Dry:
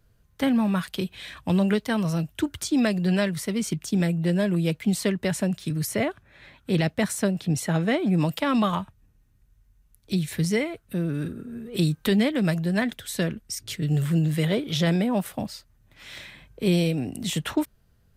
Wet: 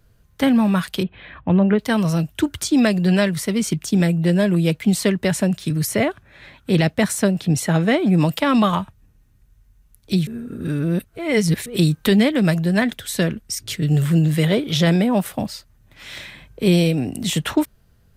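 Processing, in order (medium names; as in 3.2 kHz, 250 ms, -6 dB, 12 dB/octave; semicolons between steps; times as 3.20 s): 1.03–1.79 s: Gaussian low-pass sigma 3.6 samples; 10.27–11.66 s: reverse; trim +6 dB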